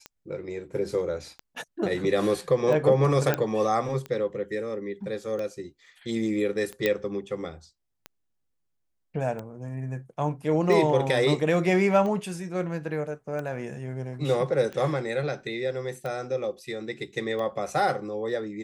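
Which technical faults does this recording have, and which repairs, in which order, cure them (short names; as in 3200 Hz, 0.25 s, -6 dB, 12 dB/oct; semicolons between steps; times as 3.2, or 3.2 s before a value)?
tick 45 rpm -22 dBFS
3.34 pop -10 dBFS
6.86 pop -11 dBFS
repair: de-click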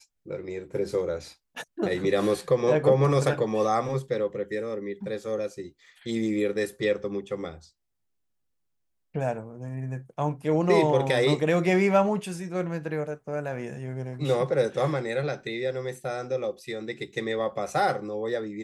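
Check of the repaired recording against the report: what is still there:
none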